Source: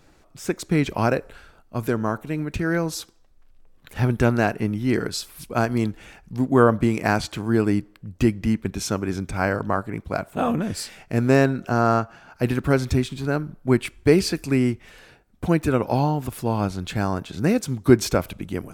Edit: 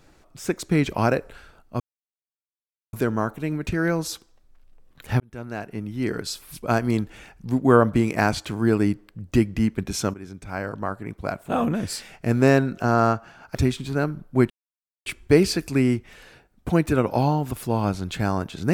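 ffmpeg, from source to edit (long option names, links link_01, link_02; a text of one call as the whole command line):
ffmpeg -i in.wav -filter_complex "[0:a]asplit=6[link_01][link_02][link_03][link_04][link_05][link_06];[link_01]atrim=end=1.8,asetpts=PTS-STARTPTS,afade=type=out:start_time=1.796:duration=0.004:curve=hsin,apad=pad_dur=1.13[link_07];[link_02]atrim=start=1.8:end=4.07,asetpts=PTS-STARTPTS,afade=type=in:duration=0.004:curve=hsin,afade=type=out:start_time=2.266:duration=0.004:curve=hsin[link_08];[link_03]atrim=start=4.07:end=9.01,asetpts=PTS-STARTPTS,afade=type=in:duration=1.39,afade=type=out:start_time=4.936:duration=0.004:curve=hsin:silence=0.188365[link_09];[link_04]atrim=start=9.01:end=12.422,asetpts=PTS-STARTPTS,afade=type=in:duration=1.55:silence=0.188365[link_10];[link_05]atrim=start=12.868:end=13.82,asetpts=PTS-STARTPTS,afade=type=out:start_time=0.948:duration=0.004:curve=hsin,apad=pad_dur=0.56[link_11];[link_06]atrim=start=13.82,asetpts=PTS-STARTPTS,afade=type=in:duration=0.004:curve=hsin[link_12];[link_07][link_08][link_09][link_10]concat=n=4:v=0:a=1[link_13];[link_11][link_12]concat=n=2:v=0:a=1[link_14];[link_13][link_14]acrossfade=duration=0.004:curve1=hsin:curve2=hsin" out.wav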